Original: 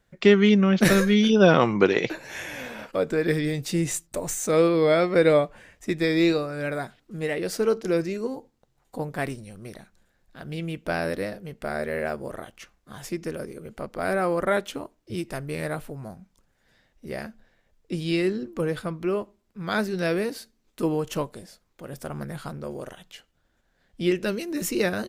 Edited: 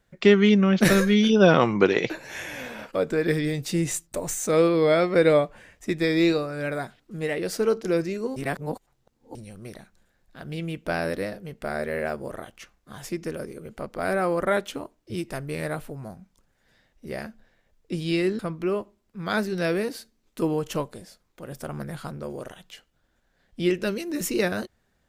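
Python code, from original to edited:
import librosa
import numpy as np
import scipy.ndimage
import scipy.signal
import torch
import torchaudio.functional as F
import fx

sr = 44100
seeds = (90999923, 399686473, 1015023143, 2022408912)

y = fx.edit(x, sr, fx.reverse_span(start_s=8.36, length_s=0.99),
    fx.cut(start_s=18.39, length_s=0.41), tone=tone)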